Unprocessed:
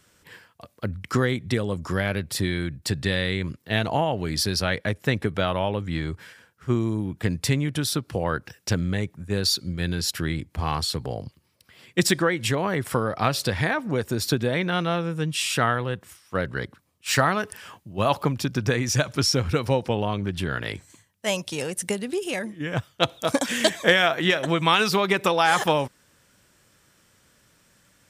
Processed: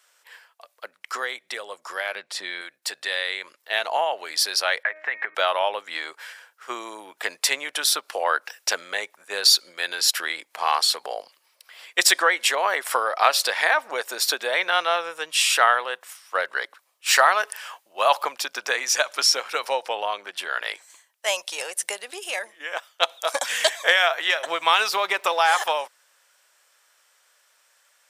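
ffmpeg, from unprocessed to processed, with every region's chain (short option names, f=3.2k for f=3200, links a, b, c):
-filter_complex "[0:a]asettb=1/sr,asplit=3[a][b][c];[a]atrim=end=2.154[d];[b]atrim=start=2.15:end=2.61,asetpts=PTS-STARTPTS,afade=t=in:d=0.004:c=qsin,afade=t=out:st=0.456:d=0.004:c=qsin,lowpass=6.9k,bass=f=250:g=10,treble=f=4k:g=-1,acompressor=mode=upward:threshold=-28dB:ratio=2.5:attack=3.2:release=140:knee=2.83:detection=peak[e];[c]atrim=start=2.606[f];[d][e]acrossfade=d=0.004:c1=hsin:c2=qsin[g];[g][f]acrossfade=d=0.004:c1=qsin:c2=hsin,asettb=1/sr,asplit=3[h][i][j];[h]atrim=end=4.834[k];[i]atrim=start=4.83:end=5.35,asetpts=PTS-STARTPTS,afade=t=in:d=0.004:c=qsin,afade=t=out:st=0.516:d=0.004:c=qsin,bandreject=f=310.8:t=h:w=4,bandreject=f=621.6:t=h:w=4,bandreject=f=932.4:t=h:w=4,bandreject=f=1.2432k:t=h:w=4,bandreject=f=1.554k:t=h:w=4,bandreject=f=1.8648k:t=h:w=4,bandreject=f=2.1756k:t=h:w=4,bandreject=f=2.4864k:t=h:w=4,acompressor=threshold=-28dB:ratio=6:attack=3.2:release=140:knee=1:detection=peak,lowpass=f=1.9k:t=q:w=3.6[l];[j]atrim=start=5.346[m];[k][l]acrossfade=d=0.004:c1=hsin:c2=qsin[n];[n][m]acrossfade=d=0.004:c1=qsin:c2=hsin,asettb=1/sr,asplit=3[o][p][q];[o]atrim=end=24.464[r];[p]atrim=start=24.46:end=25.55,asetpts=PTS-STARTPTS,afade=t=in:d=0.004:c=qsin,afade=t=out:st=1.086:d=0.004:c=qsin,lowshelf=f=310:g=11.5,aeval=exprs='sgn(val(0))*max(abs(val(0))-0.00562,0)':c=same[s];[q]atrim=start=25.546[t];[r][s]acrossfade=d=0.004:c1=hsin:c2=qsin[u];[u][t]acrossfade=d=0.004:c1=qsin:c2=hsin,highpass=f=620:w=0.5412,highpass=f=620:w=1.3066,dynaudnorm=f=760:g=13:m=11.5dB"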